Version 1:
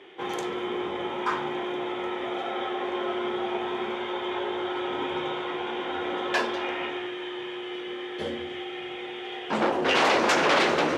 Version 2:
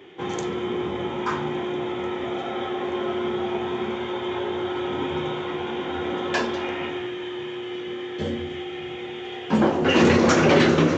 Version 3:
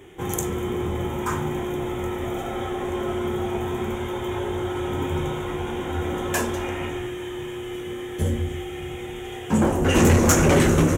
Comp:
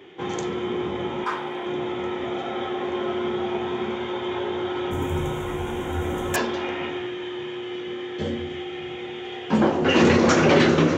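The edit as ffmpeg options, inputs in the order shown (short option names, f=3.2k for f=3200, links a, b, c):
-filter_complex "[1:a]asplit=3[a][b][c];[a]atrim=end=1.242[d];[0:a]atrim=start=1.238:end=1.662[e];[b]atrim=start=1.658:end=4.912[f];[2:a]atrim=start=4.908:end=6.362[g];[c]atrim=start=6.358[h];[d][e]acrossfade=d=0.004:c1=hsin:c2=hsin[i];[i][f]acrossfade=d=0.004:c1=hsin:c2=hsin[j];[j][g]acrossfade=d=0.004:c1=hsin:c2=hsin[k];[k][h]acrossfade=d=0.004:c1=hsin:c2=hsin"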